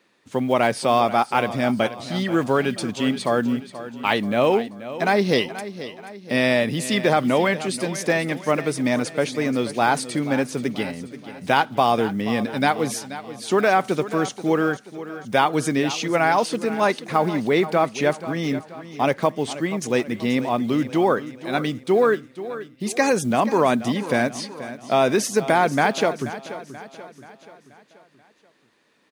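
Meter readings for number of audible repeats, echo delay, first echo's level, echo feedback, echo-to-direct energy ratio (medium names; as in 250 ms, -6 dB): 4, 482 ms, -14.0 dB, 49%, -13.0 dB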